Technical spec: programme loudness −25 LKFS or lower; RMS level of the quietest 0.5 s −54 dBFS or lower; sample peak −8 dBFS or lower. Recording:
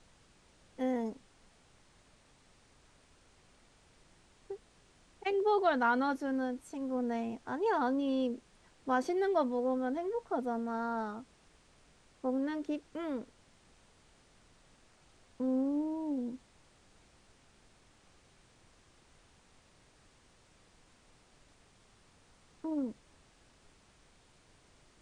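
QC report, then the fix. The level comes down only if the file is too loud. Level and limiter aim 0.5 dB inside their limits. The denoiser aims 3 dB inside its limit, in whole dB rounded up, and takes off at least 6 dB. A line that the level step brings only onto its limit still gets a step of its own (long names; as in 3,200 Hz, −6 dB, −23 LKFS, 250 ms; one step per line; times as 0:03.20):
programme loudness −34.0 LKFS: in spec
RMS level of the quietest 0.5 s −65 dBFS: in spec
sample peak −17.0 dBFS: in spec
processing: no processing needed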